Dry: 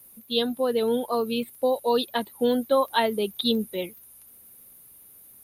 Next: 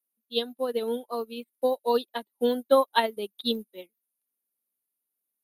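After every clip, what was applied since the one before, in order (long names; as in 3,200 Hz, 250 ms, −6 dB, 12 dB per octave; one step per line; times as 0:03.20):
high-pass filter 200 Hz 24 dB per octave
expander for the loud parts 2.5 to 1, over −42 dBFS
level +3 dB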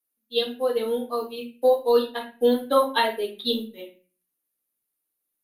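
convolution reverb RT60 0.35 s, pre-delay 3 ms, DRR −2 dB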